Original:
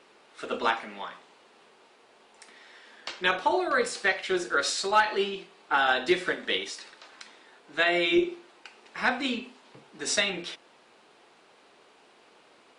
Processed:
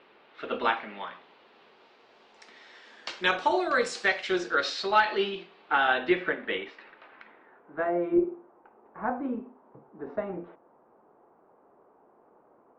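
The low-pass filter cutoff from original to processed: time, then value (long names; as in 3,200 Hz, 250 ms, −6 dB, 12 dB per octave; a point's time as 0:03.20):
low-pass filter 24 dB per octave
0:01.08 3,600 Hz
0:03.14 7,500 Hz
0:04.15 7,500 Hz
0:04.68 4,600 Hz
0:05.30 4,600 Hz
0:06.37 2,500 Hz
0:07.15 2,500 Hz
0:07.95 1,100 Hz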